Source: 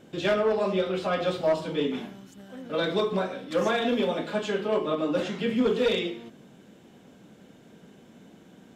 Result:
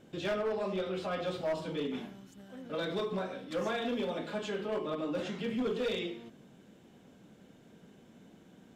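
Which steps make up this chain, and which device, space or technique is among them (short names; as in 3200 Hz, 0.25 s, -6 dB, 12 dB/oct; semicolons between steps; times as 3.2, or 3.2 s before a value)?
low shelf 89 Hz +5.5 dB; clipper into limiter (hard clip -19.5 dBFS, distortion -20 dB; limiter -22 dBFS, peak gain reduction 2.5 dB); gain -6 dB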